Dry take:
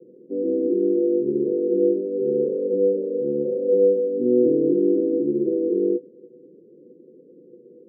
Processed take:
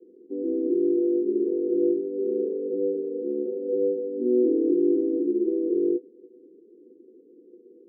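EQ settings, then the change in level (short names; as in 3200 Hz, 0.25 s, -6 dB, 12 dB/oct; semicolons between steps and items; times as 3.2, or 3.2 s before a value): band-pass 510 Hz, Q 0.73; fixed phaser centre 560 Hz, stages 6; 0.0 dB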